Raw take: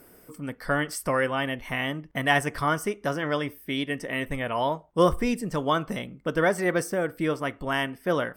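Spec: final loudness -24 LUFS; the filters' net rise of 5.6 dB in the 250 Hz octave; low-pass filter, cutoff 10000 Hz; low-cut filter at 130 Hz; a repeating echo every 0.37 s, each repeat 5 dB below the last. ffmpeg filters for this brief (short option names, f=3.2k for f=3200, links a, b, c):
-af "highpass=130,lowpass=10k,equalizer=f=250:t=o:g=7.5,aecho=1:1:370|740|1110|1480|1850|2220|2590:0.562|0.315|0.176|0.0988|0.0553|0.031|0.0173,volume=-0.5dB"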